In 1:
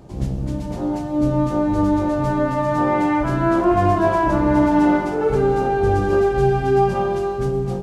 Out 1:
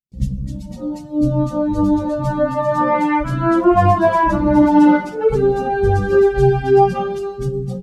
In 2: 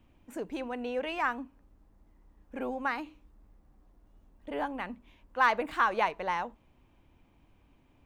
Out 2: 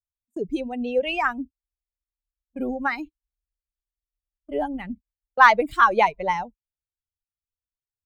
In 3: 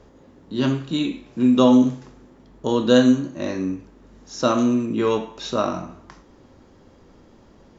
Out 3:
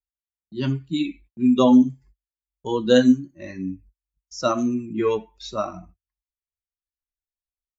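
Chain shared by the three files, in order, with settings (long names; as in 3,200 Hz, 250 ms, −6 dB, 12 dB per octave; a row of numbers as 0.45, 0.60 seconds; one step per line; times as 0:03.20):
spectral dynamics exaggerated over time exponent 2
noise gate −49 dBFS, range −37 dB
normalise the peak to −2 dBFS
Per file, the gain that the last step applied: +6.5, +13.0, +2.0 decibels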